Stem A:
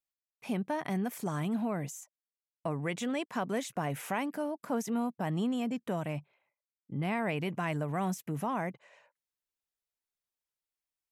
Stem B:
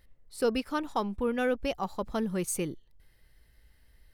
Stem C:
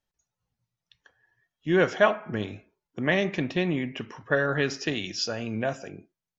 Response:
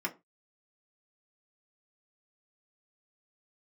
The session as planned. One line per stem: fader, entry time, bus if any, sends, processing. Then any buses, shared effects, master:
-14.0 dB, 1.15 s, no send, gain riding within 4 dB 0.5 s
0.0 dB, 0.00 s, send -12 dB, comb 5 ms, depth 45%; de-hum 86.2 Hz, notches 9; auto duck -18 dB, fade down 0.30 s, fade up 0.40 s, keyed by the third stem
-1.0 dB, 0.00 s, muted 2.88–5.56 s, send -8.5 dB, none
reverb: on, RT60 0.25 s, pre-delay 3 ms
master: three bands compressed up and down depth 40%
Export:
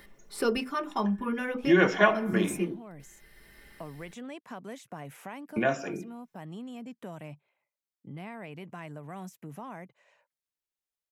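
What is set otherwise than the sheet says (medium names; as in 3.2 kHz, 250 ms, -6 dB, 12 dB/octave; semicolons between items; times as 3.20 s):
stem B: missing de-hum 86.2 Hz, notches 9; reverb return +7.0 dB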